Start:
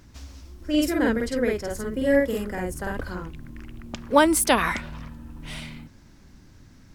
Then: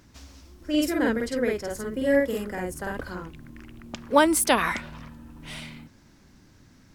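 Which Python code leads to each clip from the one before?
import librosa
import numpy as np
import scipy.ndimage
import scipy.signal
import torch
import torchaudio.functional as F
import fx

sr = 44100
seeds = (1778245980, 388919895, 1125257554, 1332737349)

y = fx.low_shelf(x, sr, hz=88.0, db=-9.0)
y = F.gain(torch.from_numpy(y), -1.0).numpy()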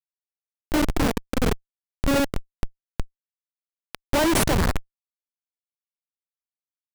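y = fx.schmitt(x, sr, flips_db=-20.0)
y = F.gain(torch.from_numpy(y), 8.5).numpy()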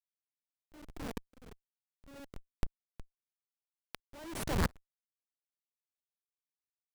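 y = fx.tremolo_decay(x, sr, direction='swelling', hz=1.5, depth_db=34)
y = F.gain(torch.from_numpy(y), -5.5).numpy()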